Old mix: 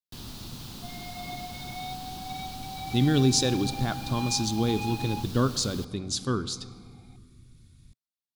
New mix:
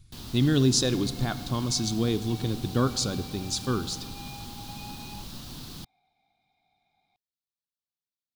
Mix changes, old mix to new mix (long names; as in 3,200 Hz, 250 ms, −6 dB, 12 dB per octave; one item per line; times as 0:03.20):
speech: entry −2.60 s
second sound −10.0 dB